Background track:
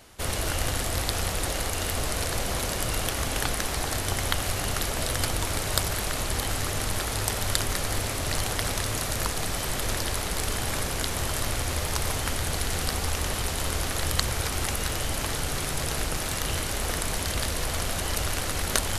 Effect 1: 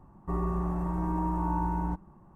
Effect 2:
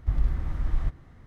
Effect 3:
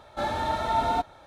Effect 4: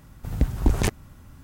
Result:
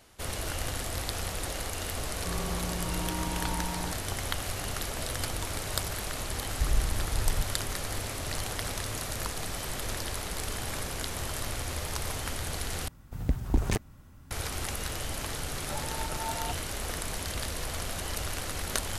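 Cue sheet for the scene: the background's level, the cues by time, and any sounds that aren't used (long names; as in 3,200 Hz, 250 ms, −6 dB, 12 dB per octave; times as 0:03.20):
background track −6 dB
0:01.97: mix in 1 −6 dB
0:06.53: mix in 2 −3 dB
0:12.88: overwrite with 4 −5.5 dB
0:15.51: mix in 3 −12 dB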